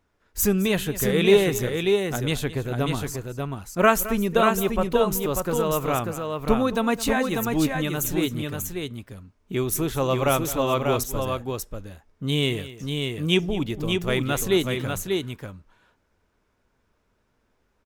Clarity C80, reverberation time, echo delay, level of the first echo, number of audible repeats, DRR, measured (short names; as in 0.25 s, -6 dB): none, none, 0.215 s, -16.0 dB, 2, none